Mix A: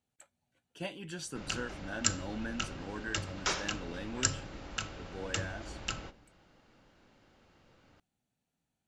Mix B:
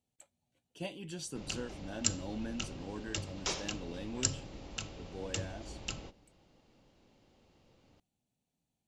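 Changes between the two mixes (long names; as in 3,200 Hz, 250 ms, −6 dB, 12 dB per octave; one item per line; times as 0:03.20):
background: send −6.5 dB
master: add parametric band 1,500 Hz −11 dB 0.92 octaves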